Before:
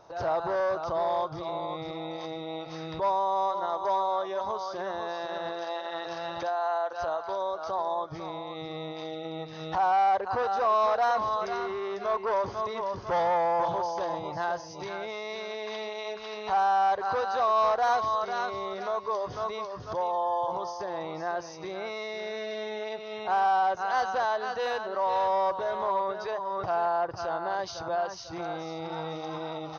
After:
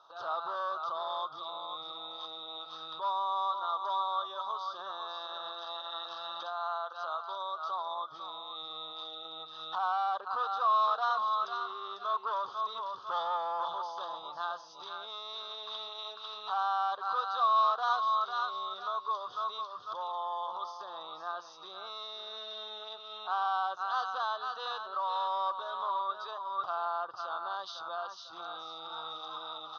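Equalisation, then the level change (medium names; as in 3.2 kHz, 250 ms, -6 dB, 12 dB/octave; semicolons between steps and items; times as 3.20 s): two resonant band-passes 2.1 kHz, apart 1.5 oct; +6.5 dB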